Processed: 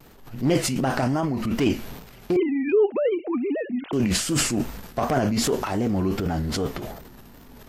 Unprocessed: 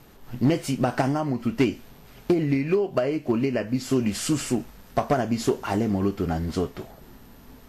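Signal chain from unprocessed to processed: 2.36–3.93 sine-wave speech; transient shaper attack -4 dB, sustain +11 dB; vibrato 2.6 Hz 96 cents

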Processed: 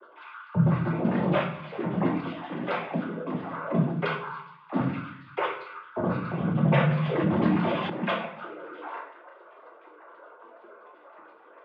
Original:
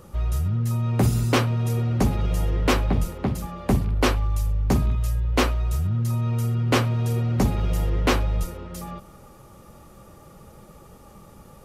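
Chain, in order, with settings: sine-wave speech; noise vocoder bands 16; flange 0.75 Hz, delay 4.8 ms, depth 6.4 ms, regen -35%; reverb RT60 0.65 s, pre-delay 6 ms, DRR -1 dB; 6.65–7.9 fast leveller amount 50%; gain -6.5 dB

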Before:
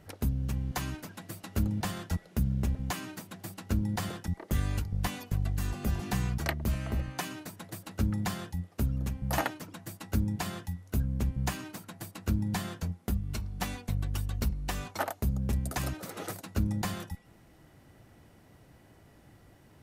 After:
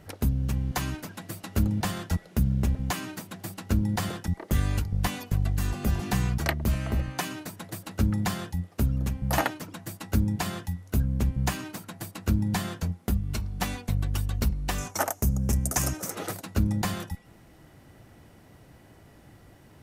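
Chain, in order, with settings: 14.78–16.15 resonant high shelf 5000 Hz +6 dB, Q 3; gain +4.5 dB

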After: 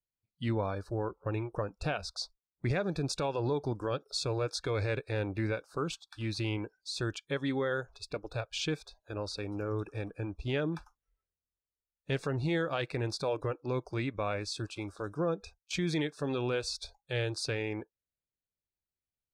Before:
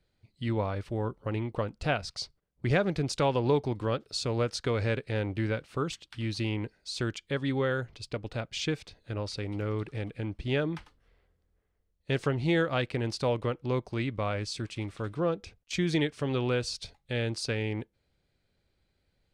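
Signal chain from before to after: limiter -21 dBFS, peak gain reduction 7.5 dB; spectral noise reduction 25 dB; gain -1 dB

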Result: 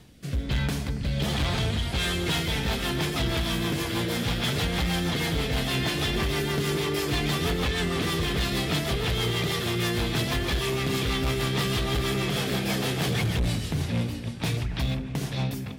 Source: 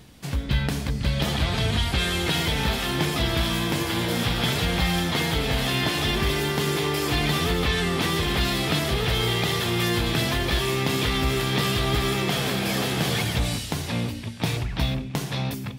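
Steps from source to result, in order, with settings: 13.1–14.01 tone controls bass +5 dB, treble -3 dB; rotary speaker horn 1.2 Hz, later 6.3 Hz, at 1.73; hard clip -21.5 dBFS, distortion -14 dB; analogue delay 0.28 s, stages 4096, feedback 65%, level -15 dB

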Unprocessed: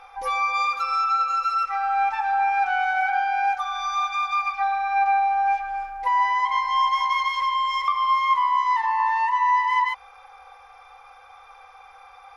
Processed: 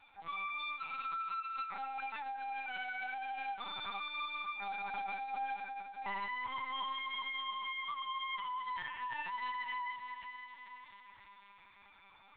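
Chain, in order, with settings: differentiator; de-hum 63.49 Hz, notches 24; chorus voices 4, 0.76 Hz, delay 13 ms, depth 3.4 ms; hard clip -38.5 dBFS, distortion -12 dB; diffused feedback echo 0.537 s, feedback 45%, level -8 dB; LPC vocoder at 8 kHz pitch kept; gain +2 dB

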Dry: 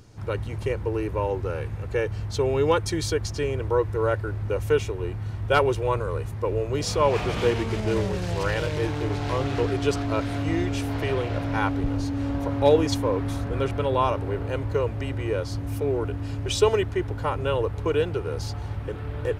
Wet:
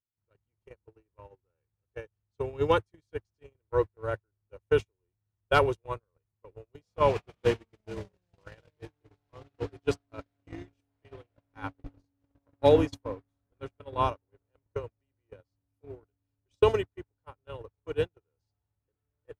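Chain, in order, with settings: gate -20 dBFS, range -50 dB; gain -2 dB

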